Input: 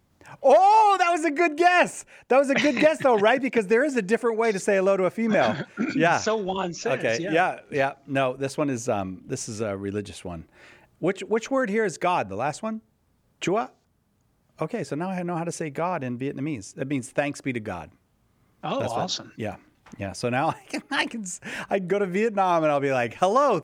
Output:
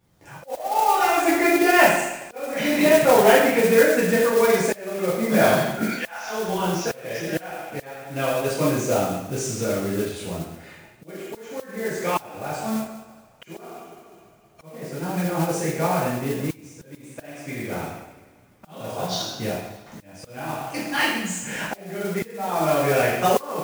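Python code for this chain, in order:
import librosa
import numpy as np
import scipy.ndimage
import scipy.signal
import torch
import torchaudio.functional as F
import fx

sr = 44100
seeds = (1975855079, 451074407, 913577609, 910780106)

y = fx.highpass(x, sr, hz=690.0, slope=24, at=(5.83, 6.29), fade=0.02)
y = fx.rev_double_slope(y, sr, seeds[0], early_s=0.87, late_s=2.2, knee_db=-18, drr_db=-8.5)
y = fx.auto_swell(y, sr, attack_ms=699.0)
y = fx.mod_noise(y, sr, seeds[1], snr_db=15)
y = y * librosa.db_to_amplitude(-5.0)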